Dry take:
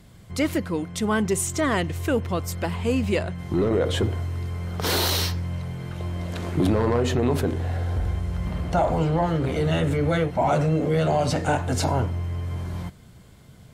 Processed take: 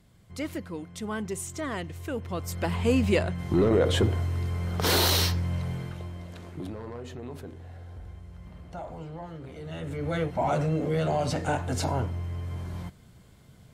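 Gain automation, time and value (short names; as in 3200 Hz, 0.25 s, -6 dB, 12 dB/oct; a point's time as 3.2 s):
2.14 s -10 dB
2.76 s 0 dB
5.76 s 0 dB
6.07 s -8.5 dB
6.77 s -17.5 dB
9.61 s -17.5 dB
10.23 s -5 dB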